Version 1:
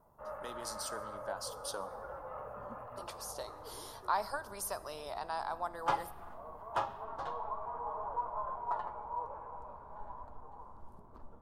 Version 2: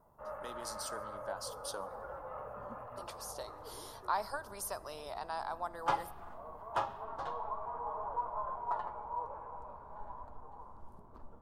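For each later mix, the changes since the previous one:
speech: send −7.5 dB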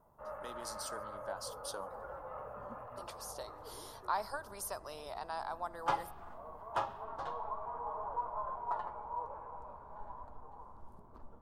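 reverb: off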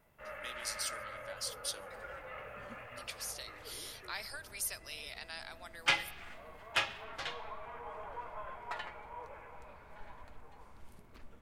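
speech −8.5 dB
master: add high shelf with overshoot 1,500 Hz +14 dB, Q 3

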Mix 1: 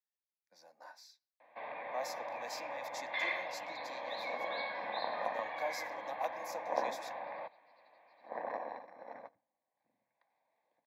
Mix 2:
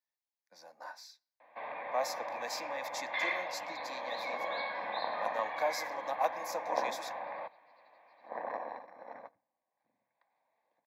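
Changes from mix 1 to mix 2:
speech +5.5 dB
first sound: send +8.5 dB
master: add parametric band 1,200 Hz +3.5 dB 0.9 octaves

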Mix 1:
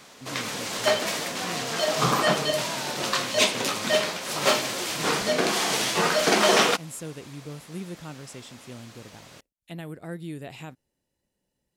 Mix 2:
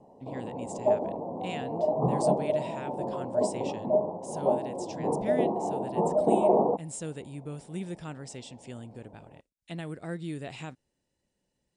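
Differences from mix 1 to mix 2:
background: add Butterworth low-pass 930 Hz 72 dB per octave
master: add linear-phase brick-wall low-pass 10,000 Hz

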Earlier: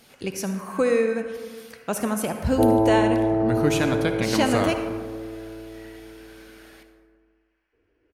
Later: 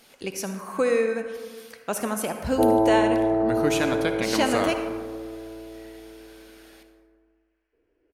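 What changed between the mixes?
first sound −5.5 dB
second sound: send +9.0 dB
master: add parametric band 100 Hz −9.5 dB 2.1 octaves

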